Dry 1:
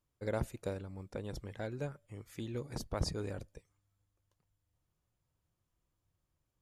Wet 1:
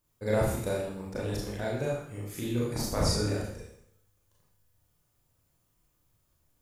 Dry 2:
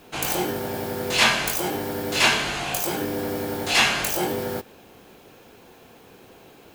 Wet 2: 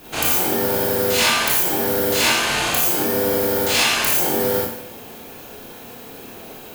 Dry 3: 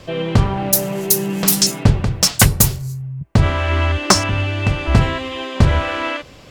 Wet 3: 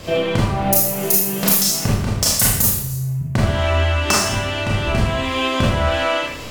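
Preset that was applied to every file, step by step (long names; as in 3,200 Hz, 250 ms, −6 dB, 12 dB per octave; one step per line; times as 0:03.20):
high-shelf EQ 9,600 Hz +11 dB
downward compressor 3 to 1, threshold −26 dBFS
four-comb reverb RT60 0.69 s, combs from 26 ms, DRR −5 dB
level +3.5 dB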